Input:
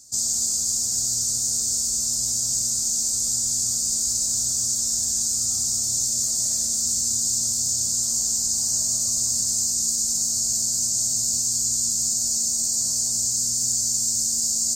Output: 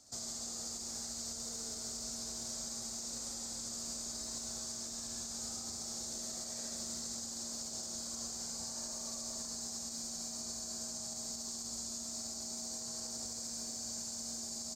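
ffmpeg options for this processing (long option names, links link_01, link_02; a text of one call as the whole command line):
ffmpeg -i in.wav -filter_complex "[0:a]asplit=2[link_01][link_02];[link_02]aecho=0:1:64.14|137:0.794|1[link_03];[link_01][link_03]amix=inputs=2:normalize=0,alimiter=limit=-18.5dB:level=0:latency=1:release=350,acrossover=split=310 3100:gain=0.251 1 0.0794[link_04][link_05][link_06];[link_04][link_05][link_06]amix=inputs=3:normalize=0,volume=4dB" out.wav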